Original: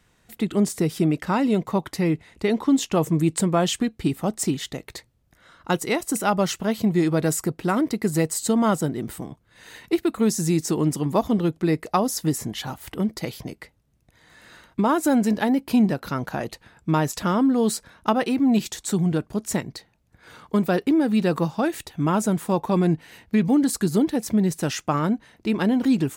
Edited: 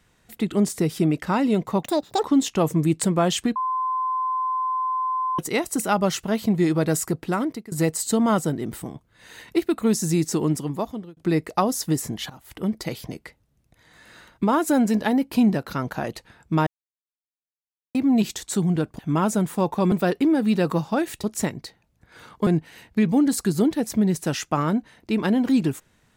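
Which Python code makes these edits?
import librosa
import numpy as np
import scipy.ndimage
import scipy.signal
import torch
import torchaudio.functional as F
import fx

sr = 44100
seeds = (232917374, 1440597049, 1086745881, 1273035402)

y = fx.edit(x, sr, fx.speed_span(start_s=1.83, length_s=0.77, speed=1.89),
    fx.bleep(start_s=3.92, length_s=1.83, hz=1030.0, db=-21.5),
    fx.fade_out_to(start_s=7.47, length_s=0.61, curve='qsin', floor_db=-23.5),
    fx.fade_out_span(start_s=10.8, length_s=0.73),
    fx.fade_in_from(start_s=12.66, length_s=0.43, floor_db=-18.0),
    fx.silence(start_s=17.03, length_s=1.28),
    fx.swap(start_s=19.35, length_s=1.23, other_s=21.9, other_length_s=0.93), tone=tone)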